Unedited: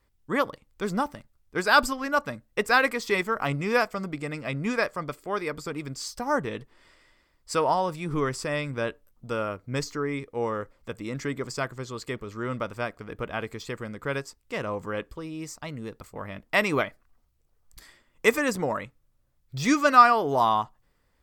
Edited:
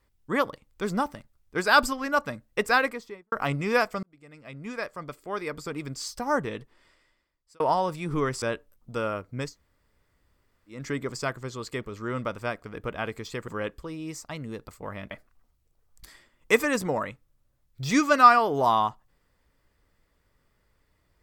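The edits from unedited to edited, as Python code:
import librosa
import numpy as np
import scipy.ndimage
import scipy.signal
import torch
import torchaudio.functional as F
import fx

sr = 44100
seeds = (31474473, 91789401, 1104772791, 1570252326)

y = fx.studio_fade_out(x, sr, start_s=2.65, length_s=0.67)
y = fx.edit(y, sr, fx.fade_in_span(start_s=4.03, length_s=1.84),
    fx.fade_out_span(start_s=6.4, length_s=1.2),
    fx.cut(start_s=8.42, length_s=0.35),
    fx.room_tone_fill(start_s=9.81, length_s=1.32, crossfade_s=0.24),
    fx.cut(start_s=13.83, length_s=0.98),
    fx.cut(start_s=16.44, length_s=0.41), tone=tone)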